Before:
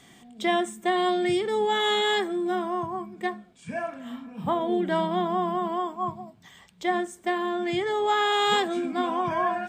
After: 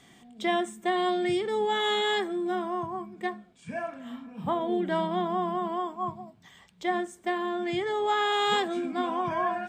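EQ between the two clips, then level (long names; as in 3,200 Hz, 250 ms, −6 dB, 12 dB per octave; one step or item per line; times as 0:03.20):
high-shelf EQ 7,800 Hz −4 dB
−2.5 dB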